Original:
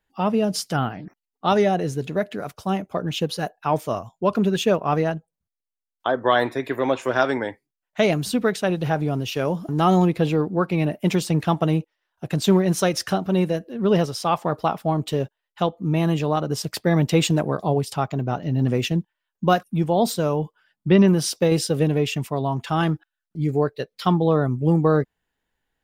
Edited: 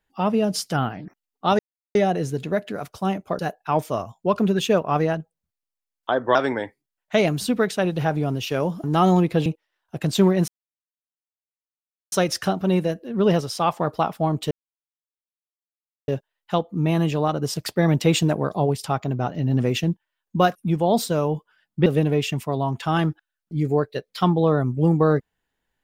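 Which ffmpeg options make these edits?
ffmpeg -i in.wav -filter_complex "[0:a]asplit=8[link_01][link_02][link_03][link_04][link_05][link_06][link_07][link_08];[link_01]atrim=end=1.59,asetpts=PTS-STARTPTS,afade=type=out:start_time=1.586:duration=0.004:curve=hsin,apad=pad_dur=0.36[link_09];[link_02]atrim=start=1.59:end=3.032,asetpts=PTS-STARTPTS,afade=type=in:duration=0.004:curve=hsin[link_10];[link_03]atrim=start=3.358:end=6.322[link_11];[link_04]atrim=start=7.198:end=10.312[link_12];[link_05]atrim=start=11.748:end=12.77,asetpts=PTS-STARTPTS,afade=type=out:start_time=1.018:duration=0.004:curve=hsin,apad=pad_dur=1.64[link_13];[link_06]atrim=start=12.77:end=15.16,asetpts=PTS-STARTPTS,afade=type=in:duration=0.004:curve=hsin,afade=type=out:start_time=2.386:duration=0.004:curve=hsin,apad=pad_dur=1.57[link_14];[link_07]atrim=start=15.16:end=20.942,asetpts=PTS-STARTPTS,afade=type=in:duration=0.004:curve=hsin[link_15];[link_08]atrim=start=21.698[link_16];[link_09][link_10]concat=n=2:v=0:a=1[link_17];[link_17][link_11]acrossfade=duration=0.004:curve1=hsin:curve2=hsin[link_18];[link_18][link_12]acrossfade=duration=0.004:curve1=hsin:curve2=hsin[link_19];[link_13][link_14][link_15]concat=n=3:v=0:a=1[link_20];[link_19][link_20]acrossfade=duration=0.004:curve1=hsin:curve2=hsin[link_21];[link_21][link_16]acrossfade=duration=0.004:curve1=hsin:curve2=hsin" out.wav

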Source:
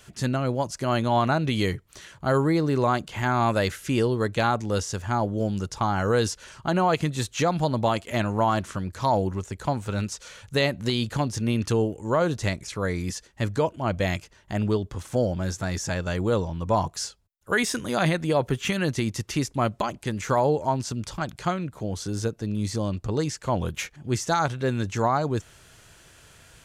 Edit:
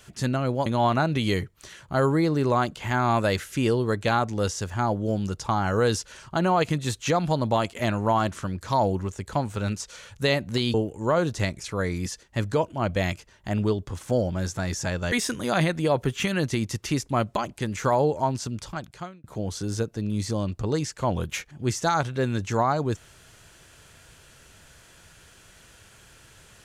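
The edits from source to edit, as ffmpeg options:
ffmpeg -i in.wav -filter_complex "[0:a]asplit=5[link_01][link_02][link_03][link_04][link_05];[link_01]atrim=end=0.662[link_06];[link_02]atrim=start=0.978:end=11.062[link_07];[link_03]atrim=start=11.778:end=16.162[link_08];[link_04]atrim=start=17.568:end=21.69,asetpts=PTS-STARTPTS,afade=type=out:start_time=3.042:duration=1.08:curve=qsin[link_09];[link_05]atrim=start=21.69,asetpts=PTS-STARTPTS,afade=type=in:duration=0.004:curve=hsin[link_10];[link_06][link_07]acrossfade=duration=0.004:curve1=hsin:curve2=hsin[link_11];[link_11][link_08]acrossfade=duration=0.004:curve1=hsin:curve2=hsin[link_12];[link_09][link_10]concat=n=2:v=0:a=1[link_13];[link_12][link_13]acrossfade=duration=0.004:curve1=hsin:curve2=hsin" out.wav

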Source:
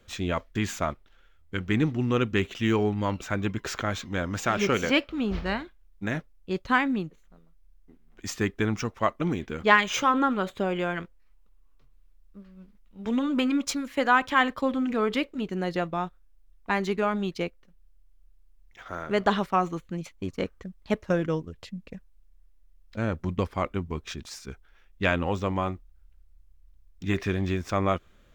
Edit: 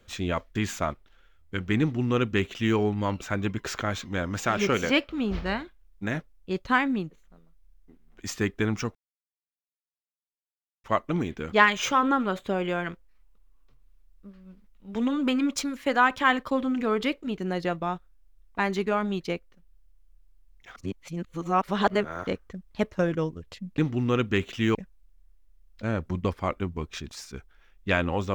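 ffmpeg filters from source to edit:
ffmpeg -i in.wav -filter_complex "[0:a]asplit=6[link_01][link_02][link_03][link_04][link_05][link_06];[link_01]atrim=end=8.95,asetpts=PTS-STARTPTS,afade=type=out:start_time=8.946:duration=0.004:curve=hsin,apad=pad_dur=1.89[link_07];[link_02]atrim=start=8.95:end=18.872,asetpts=PTS-STARTPTS,afade=type=in:duration=0.004:curve=hsin[link_08];[link_03]atrim=start=18.868:end=20.382,asetpts=PTS-STARTPTS,areverse[link_09];[link_04]atrim=start=20.378:end=21.892[link_10];[link_05]atrim=start=1.798:end=2.772[link_11];[link_06]atrim=start=21.888[link_12];[link_07][link_08]concat=n=2:v=0:a=1[link_13];[link_13][link_09]acrossfade=duration=0.004:curve1=hsin:curve2=hsin[link_14];[link_14][link_10]acrossfade=duration=0.004:curve1=hsin:curve2=hsin[link_15];[link_15][link_11]acrossfade=duration=0.004:curve1=hsin:curve2=hsin[link_16];[link_16][link_12]acrossfade=duration=0.004:curve1=hsin:curve2=hsin" out.wav

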